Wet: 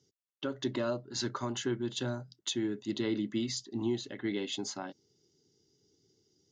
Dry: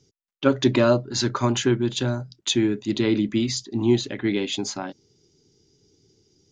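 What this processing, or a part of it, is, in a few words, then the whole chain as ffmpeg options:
PA system with an anti-feedback notch: -af "highpass=f=140:p=1,asuperstop=centerf=2400:order=8:qfactor=7.8,alimiter=limit=-14dB:level=0:latency=1:release=392,volume=-8.5dB"

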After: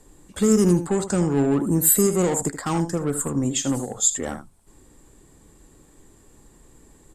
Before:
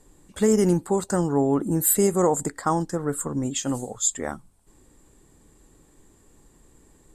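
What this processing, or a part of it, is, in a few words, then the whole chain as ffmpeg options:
one-band saturation: -filter_complex "[0:a]asettb=1/sr,asplit=3[a][b][c];[a]atrim=end=0.814[d];[b]atrim=start=0.81:end=1.3,asetpts=PTS-STARTPTS,afade=t=in:d=0.004:c=qsin,afade=t=out:st=0.486:d=0.004:c=qsin,lowpass=9k[e];[c]atrim=start=1.296[f];[d][e]acrossfade=d=0.004:c1=hsin:c2=qsin[g];[g][f]acrossfade=d=0.004:c1=qsin:c2=hsin,aecho=1:1:78:0.237,acrossover=split=330|3300[h][i][j];[i]asoftclip=type=tanh:threshold=-28dB[k];[h][k][j]amix=inputs=3:normalize=0,volume=3.5dB"

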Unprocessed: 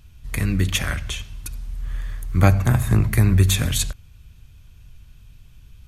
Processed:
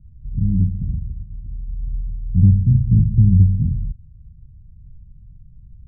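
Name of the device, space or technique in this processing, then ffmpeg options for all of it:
the neighbour's flat through the wall: -af "lowpass=f=200:w=0.5412,lowpass=f=200:w=1.3066,equalizer=f=180:t=o:w=0.77:g=4,volume=3dB"

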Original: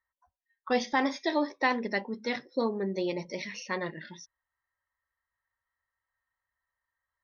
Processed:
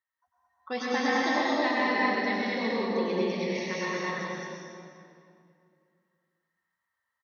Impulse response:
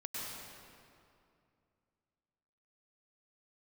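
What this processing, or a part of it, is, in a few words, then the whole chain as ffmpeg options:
stadium PA: -filter_complex "[0:a]highpass=120,equalizer=f=3.1k:t=o:w=1.8:g=3,aecho=1:1:218.7|259.5:0.891|0.316[a];[1:a]atrim=start_sample=2205[b];[a][b]afir=irnorm=-1:irlink=0,volume=-1.5dB"

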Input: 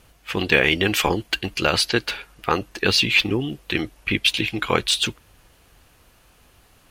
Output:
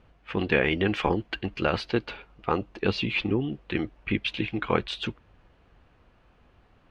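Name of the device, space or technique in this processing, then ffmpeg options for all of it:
phone in a pocket: -filter_complex "[0:a]asettb=1/sr,asplit=3[a][b][c];[a]atrim=end=1.864[d];[b]atrim=start=1.86:end=3.23,asetpts=PTS-STARTPTS,afade=t=in:d=0.004:c=qsin,afade=t=out:st=1.366:d=0.004:c=qsin,equalizer=f=1.7k:t=o:w=0.47:g=-6[e];[c]atrim=start=3.226[f];[d][e]acrossfade=d=0.004:c1=hsin:c2=qsin[g];[g][f]acrossfade=d=0.004:c1=qsin:c2=hsin,lowpass=3.2k,equalizer=f=210:t=o:w=0.35:g=2.5,highshelf=f=2.1k:g=-8.5,volume=-3dB"

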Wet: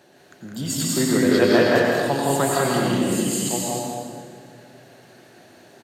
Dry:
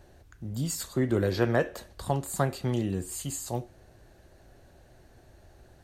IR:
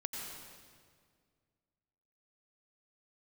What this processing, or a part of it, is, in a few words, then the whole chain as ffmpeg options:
stadium PA: -filter_complex "[0:a]highpass=f=160:w=0.5412,highpass=f=160:w=1.3066,equalizer=f=3.2k:t=o:w=1.7:g=5,aecho=1:1:163.3|195.3:0.631|0.794[a];[1:a]atrim=start_sample=2205[b];[a][b]afir=irnorm=-1:irlink=0,volume=6.5dB"

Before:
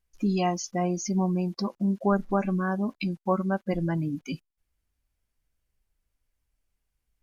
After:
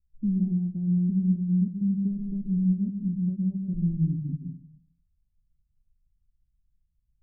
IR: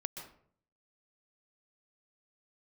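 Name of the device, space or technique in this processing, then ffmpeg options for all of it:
club heard from the street: -filter_complex "[0:a]alimiter=limit=-17dB:level=0:latency=1:release=292,lowpass=f=180:w=0.5412,lowpass=f=180:w=1.3066[a];[1:a]atrim=start_sample=2205[b];[a][b]afir=irnorm=-1:irlink=0,volume=7dB"

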